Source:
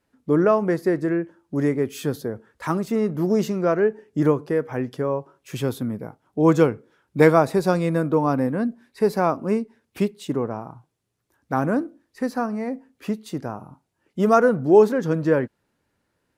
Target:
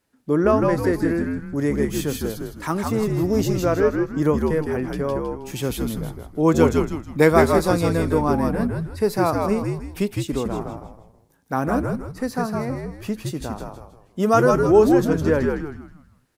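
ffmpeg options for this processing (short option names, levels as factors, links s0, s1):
-filter_complex "[0:a]highshelf=f=3700:g=7.5,asplit=6[s0][s1][s2][s3][s4][s5];[s1]adelay=159,afreqshift=-76,volume=0.708[s6];[s2]adelay=318,afreqshift=-152,volume=0.263[s7];[s3]adelay=477,afreqshift=-228,volume=0.0966[s8];[s4]adelay=636,afreqshift=-304,volume=0.0359[s9];[s5]adelay=795,afreqshift=-380,volume=0.0133[s10];[s0][s6][s7][s8][s9][s10]amix=inputs=6:normalize=0,volume=0.891"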